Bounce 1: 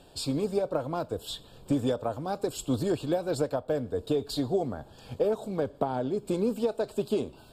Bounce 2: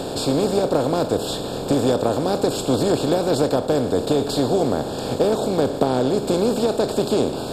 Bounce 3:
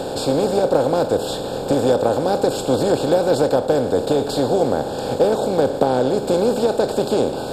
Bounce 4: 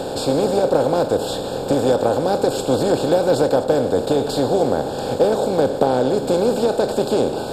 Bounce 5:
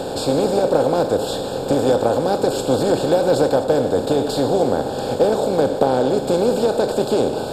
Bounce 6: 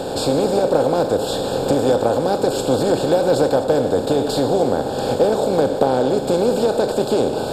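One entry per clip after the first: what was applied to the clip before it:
compressor on every frequency bin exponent 0.4; level +3.5 dB
hollow resonant body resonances 530/810/1,500 Hz, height 7 dB, ringing for 25 ms; level −1 dB
delay that plays each chunk backwards 140 ms, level −14 dB
convolution reverb RT60 0.95 s, pre-delay 48 ms, DRR 12 dB
camcorder AGC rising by 10 dB per second

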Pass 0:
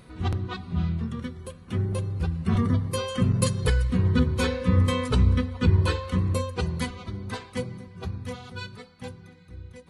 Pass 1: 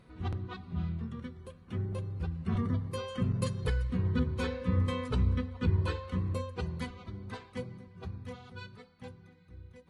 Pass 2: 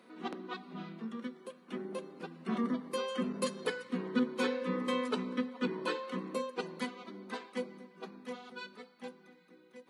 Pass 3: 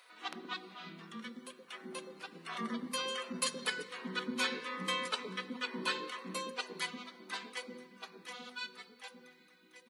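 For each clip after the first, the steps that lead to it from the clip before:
high-shelf EQ 5,800 Hz −11 dB; level −8 dB
Butterworth high-pass 210 Hz 48 dB per octave; level +3 dB
tilt shelving filter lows −7 dB, about 1,200 Hz; mains-hum notches 50/100/150/200/250/300/350/400/450/500 Hz; multiband delay without the direct sound highs, lows 120 ms, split 490 Hz; level +1 dB

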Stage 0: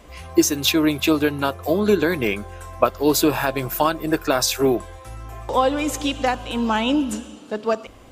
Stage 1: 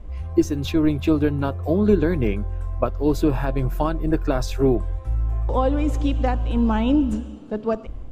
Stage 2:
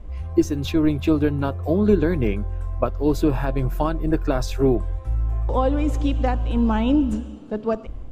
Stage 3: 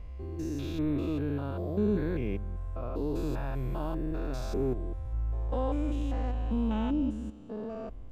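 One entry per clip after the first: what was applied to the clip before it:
low-shelf EQ 62 Hz +11 dB; automatic gain control gain up to 3 dB; spectral tilt −3.5 dB per octave; level −8 dB
no processing that can be heard
spectrum averaged block by block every 200 ms; level −8.5 dB

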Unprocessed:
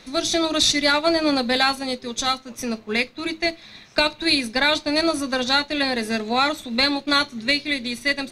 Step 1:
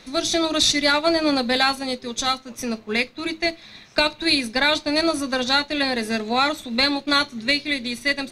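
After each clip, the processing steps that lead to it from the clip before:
no processing that can be heard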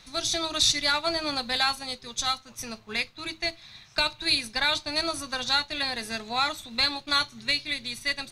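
octave-band graphic EQ 125/250/500/2,000 Hz +4/−12/−9/−4 dB
level −2.5 dB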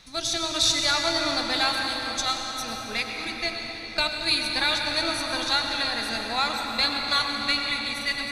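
convolution reverb RT60 5.6 s, pre-delay 87 ms, DRR 1 dB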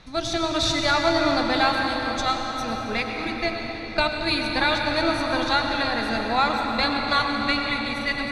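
low-pass filter 1,100 Hz 6 dB per octave
level +8.5 dB

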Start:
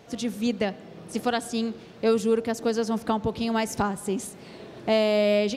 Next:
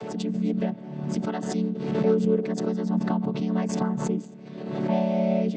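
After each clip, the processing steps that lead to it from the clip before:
channel vocoder with a chord as carrier major triad, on D3
background raised ahead of every attack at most 43 dB per second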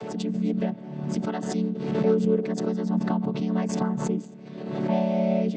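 no processing that can be heard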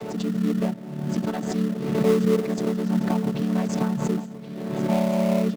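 single-tap delay 1,074 ms −13.5 dB
in parallel at −9 dB: sample-rate reduction 1,600 Hz, jitter 20%

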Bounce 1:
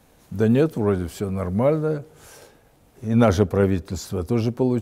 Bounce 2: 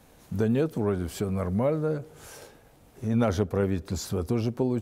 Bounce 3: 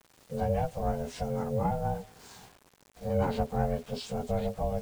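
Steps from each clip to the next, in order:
downward compressor 2 to 1, threshold −26 dBFS, peak gain reduction 8.5 dB
partials spread apart or drawn together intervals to 89%; ring modulation 330 Hz; bit reduction 9 bits

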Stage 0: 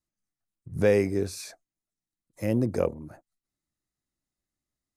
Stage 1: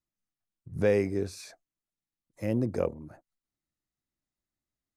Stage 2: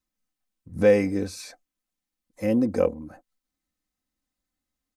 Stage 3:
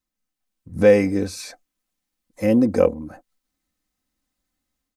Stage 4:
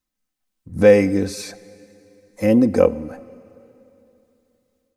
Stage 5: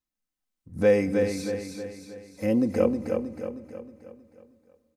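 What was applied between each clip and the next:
high-shelf EQ 7,800 Hz −8 dB; level −3 dB
comb filter 3.9 ms, depth 69%; level +4 dB
automatic gain control gain up to 6 dB
dense smooth reverb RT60 3 s, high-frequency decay 0.9×, DRR 18.5 dB; level +2 dB
repeating echo 315 ms, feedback 48%, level −5.5 dB; level −8.5 dB

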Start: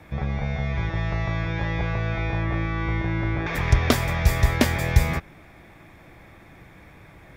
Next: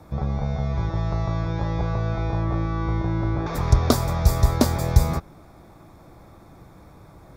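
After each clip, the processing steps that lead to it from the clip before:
flat-topped bell 2,300 Hz −13.5 dB 1.2 octaves
level +1.5 dB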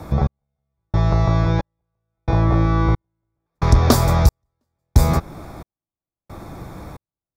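in parallel at +1 dB: downward compressor, threshold −30 dBFS, peak gain reduction 19.5 dB
on the sum: soft clipping −9 dBFS, distortion −15 dB
gate pattern "xx.....xxx" 112 BPM −60 dB
level +5.5 dB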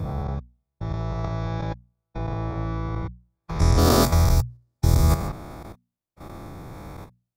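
every bin's largest magnitude spread in time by 240 ms
output level in coarse steps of 11 dB
mains-hum notches 60/120/180/240 Hz
level −5 dB

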